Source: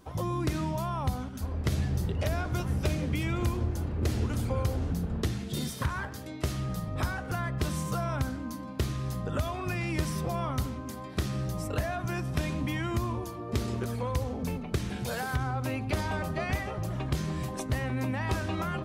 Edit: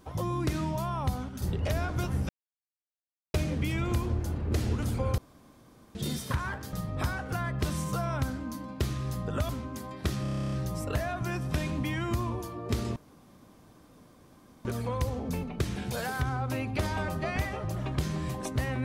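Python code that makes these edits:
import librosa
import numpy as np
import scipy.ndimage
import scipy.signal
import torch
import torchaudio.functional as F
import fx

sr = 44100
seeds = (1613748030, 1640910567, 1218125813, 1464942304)

y = fx.edit(x, sr, fx.cut(start_s=1.42, length_s=0.56),
    fx.insert_silence(at_s=2.85, length_s=1.05),
    fx.room_tone_fill(start_s=4.69, length_s=0.77),
    fx.cut(start_s=6.24, length_s=0.48),
    fx.cut(start_s=9.48, length_s=1.14),
    fx.stutter(start_s=11.35, slice_s=0.03, count=11),
    fx.insert_room_tone(at_s=13.79, length_s=1.69), tone=tone)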